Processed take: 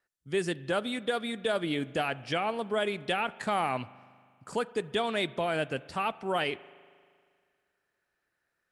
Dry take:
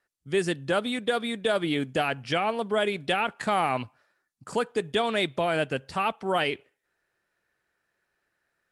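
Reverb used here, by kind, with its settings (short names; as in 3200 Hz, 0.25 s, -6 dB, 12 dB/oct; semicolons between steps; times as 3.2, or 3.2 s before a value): spring tank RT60 2 s, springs 39 ms, chirp 50 ms, DRR 19 dB; gain -4 dB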